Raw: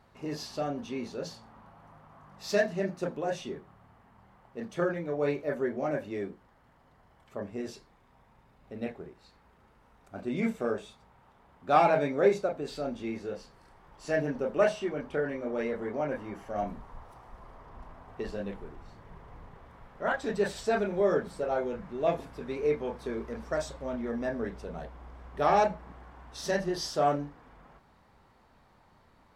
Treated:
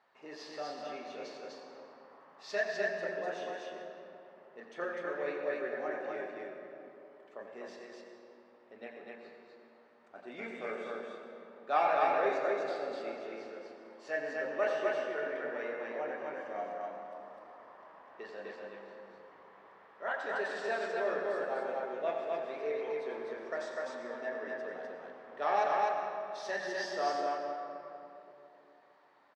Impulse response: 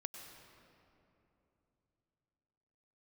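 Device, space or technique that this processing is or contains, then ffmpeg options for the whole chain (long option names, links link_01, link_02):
station announcement: -filter_complex "[0:a]highpass=500,lowpass=4800,equalizer=frequency=1800:width_type=o:width=0.2:gain=5.5,aecho=1:1:87.46|250.7:0.316|0.794[link_01];[1:a]atrim=start_sample=2205[link_02];[link_01][link_02]afir=irnorm=-1:irlink=0,volume=-2dB"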